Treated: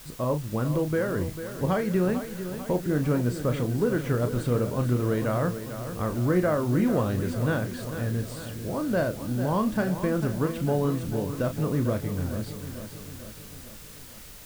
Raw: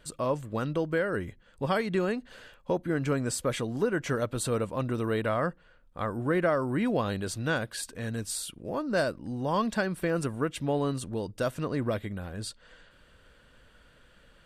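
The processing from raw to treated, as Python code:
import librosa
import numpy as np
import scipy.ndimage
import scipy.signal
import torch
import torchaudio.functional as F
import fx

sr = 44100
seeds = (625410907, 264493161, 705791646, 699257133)

y = fx.lowpass(x, sr, hz=1600.0, slope=6)
y = fx.low_shelf(y, sr, hz=220.0, db=8.5)
y = fx.quant_dither(y, sr, seeds[0], bits=8, dither='triangular')
y = fx.doubler(y, sr, ms=33.0, db=-9.0)
y = fx.echo_feedback(y, sr, ms=446, feedback_pct=58, wet_db=-10.5)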